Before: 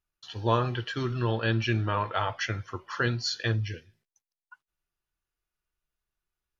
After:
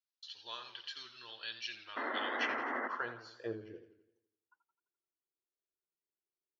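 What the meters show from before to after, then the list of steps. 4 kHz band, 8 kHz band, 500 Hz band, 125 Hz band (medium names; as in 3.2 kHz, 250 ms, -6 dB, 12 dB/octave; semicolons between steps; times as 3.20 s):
-8.0 dB, no reading, -12.0 dB, -32.0 dB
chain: bass shelf 260 Hz -7 dB; band-pass sweep 4.3 kHz -> 370 Hz, 2.08–3.56 s; painted sound noise, 1.96–2.88 s, 220–2100 Hz -37 dBFS; modulated delay 85 ms, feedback 52%, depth 97 cents, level -11.5 dB; trim -1 dB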